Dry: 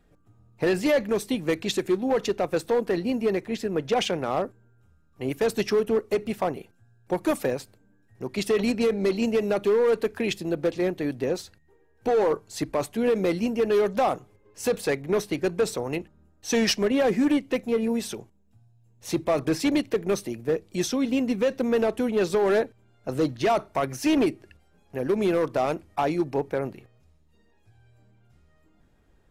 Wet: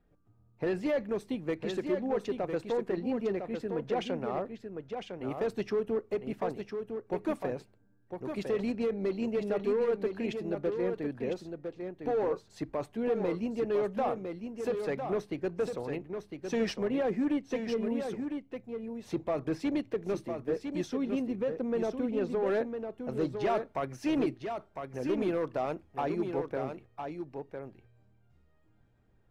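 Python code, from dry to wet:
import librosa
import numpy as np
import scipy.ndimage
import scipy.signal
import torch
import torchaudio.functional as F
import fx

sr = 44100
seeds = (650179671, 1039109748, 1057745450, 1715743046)

y = fx.lowpass(x, sr, hz=fx.steps((0.0, 1700.0), (21.26, 1000.0), (22.46, 2700.0)), slope=6)
y = y + 10.0 ** (-6.5 / 20.0) * np.pad(y, (int(1005 * sr / 1000.0), 0))[:len(y)]
y = y * 10.0 ** (-7.5 / 20.0)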